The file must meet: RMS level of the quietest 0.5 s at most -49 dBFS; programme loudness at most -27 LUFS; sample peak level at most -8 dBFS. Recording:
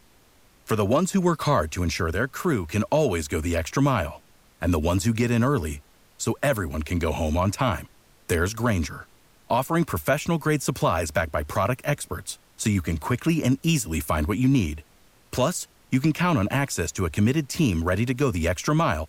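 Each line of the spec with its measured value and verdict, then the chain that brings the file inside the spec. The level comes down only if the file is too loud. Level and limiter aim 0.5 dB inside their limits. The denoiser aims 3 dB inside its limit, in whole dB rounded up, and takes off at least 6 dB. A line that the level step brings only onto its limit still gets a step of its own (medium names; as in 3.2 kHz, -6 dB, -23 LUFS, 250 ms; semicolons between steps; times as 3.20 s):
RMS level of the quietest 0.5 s -57 dBFS: pass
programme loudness -24.5 LUFS: fail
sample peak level -10.5 dBFS: pass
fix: trim -3 dB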